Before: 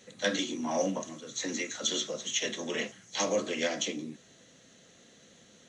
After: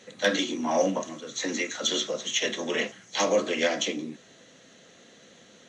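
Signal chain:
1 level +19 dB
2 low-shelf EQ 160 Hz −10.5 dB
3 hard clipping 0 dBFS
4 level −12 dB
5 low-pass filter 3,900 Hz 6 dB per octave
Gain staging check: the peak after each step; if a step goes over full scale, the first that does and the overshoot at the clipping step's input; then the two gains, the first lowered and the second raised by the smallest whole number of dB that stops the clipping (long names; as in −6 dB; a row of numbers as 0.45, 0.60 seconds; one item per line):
+5.0, +5.0, 0.0, −12.0, −12.0 dBFS
step 1, 5.0 dB
step 1 +14 dB, step 4 −7 dB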